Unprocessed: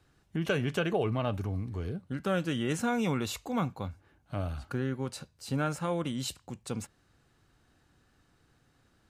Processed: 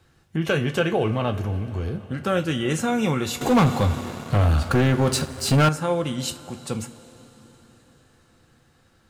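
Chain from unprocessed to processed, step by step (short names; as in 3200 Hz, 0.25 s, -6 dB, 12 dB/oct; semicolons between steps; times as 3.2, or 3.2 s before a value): bell 170 Hz -5.5 dB 0.23 oct; two-slope reverb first 0.21 s, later 4.6 s, from -21 dB, DRR 5.5 dB; 3.41–5.69 sample leveller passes 3; gain +6.5 dB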